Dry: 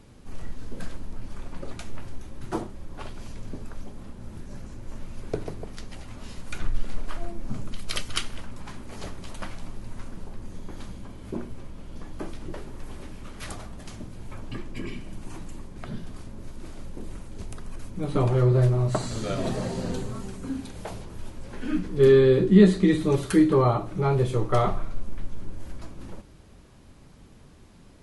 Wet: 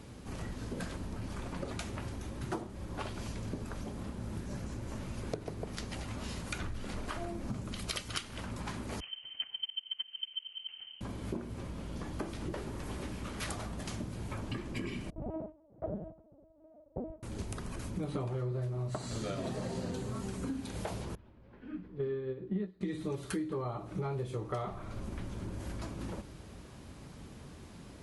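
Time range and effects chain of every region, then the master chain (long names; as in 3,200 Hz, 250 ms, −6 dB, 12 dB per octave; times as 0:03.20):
0:09.00–0:11.01: noise gate −29 dBFS, range −19 dB + voice inversion scrambler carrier 3,100 Hz
0:15.10–0:17.23: noise gate with hold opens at −26 dBFS, closes at −34 dBFS + low-pass with resonance 640 Hz, resonance Q 5.1 + linear-prediction vocoder at 8 kHz pitch kept
0:21.15–0:22.81: high-frequency loss of the air 340 metres + expander for the loud parts 2.5 to 1, over −23 dBFS
whole clip: high-pass filter 47 Hz; downward compressor 8 to 1, threshold −37 dBFS; level +3 dB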